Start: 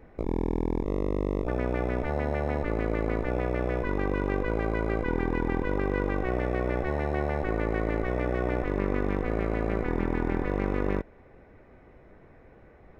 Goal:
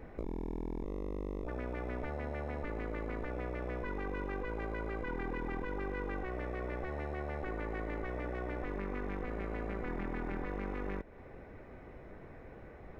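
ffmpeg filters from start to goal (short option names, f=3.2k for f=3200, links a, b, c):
-af "alimiter=level_in=0.5dB:limit=-24dB:level=0:latency=1:release=16,volume=-0.5dB,acompressor=threshold=-42dB:ratio=2,volume=2.5dB"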